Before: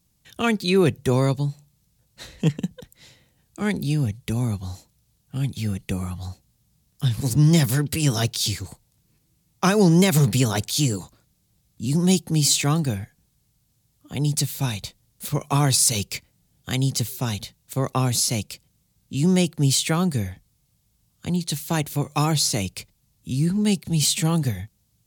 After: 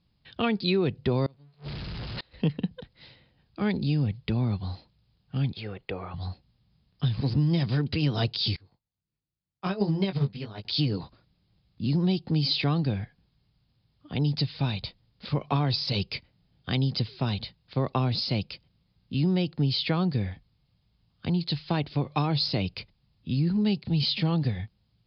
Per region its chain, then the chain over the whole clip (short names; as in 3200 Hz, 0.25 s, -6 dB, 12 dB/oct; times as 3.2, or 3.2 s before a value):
1.26–2.34 zero-crossing step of -27 dBFS + flipped gate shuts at -26 dBFS, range -32 dB
5.53–6.14 treble ducked by the level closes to 2500 Hz, closed at -26 dBFS + resonant low shelf 310 Hz -11 dB, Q 1.5
8.56–10.65 chorus 1.5 Hz, delay 19.5 ms, depth 2.1 ms + upward expander 2.5:1, over -29 dBFS
whole clip: Chebyshev low-pass 5000 Hz, order 8; dynamic EQ 1600 Hz, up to -4 dB, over -39 dBFS, Q 0.96; compressor, threshold -21 dBFS